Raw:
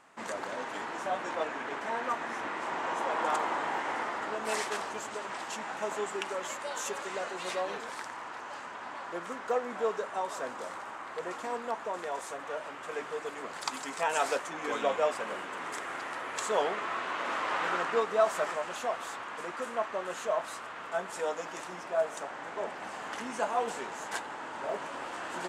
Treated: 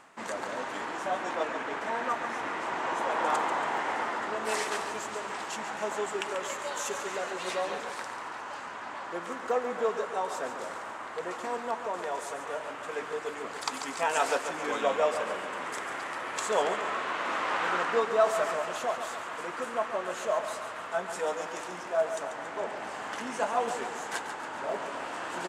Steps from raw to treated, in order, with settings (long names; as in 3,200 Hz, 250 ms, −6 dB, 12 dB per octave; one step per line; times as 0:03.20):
reversed playback
upward compression, threshold −40 dBFS
reversed playback
repeating echo 140 ms, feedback 56%, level −9.5 dB
level +1.5 dB